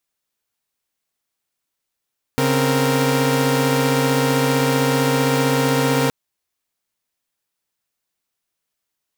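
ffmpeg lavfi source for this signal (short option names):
-f lavfi -i "aevalsrc='0.133*((2*mod(138.59*t,1)-1)+(2*mod(261.63*t,1)-1)+(2*mod(466.16*t,1)-1))':d=3.72:s=44100"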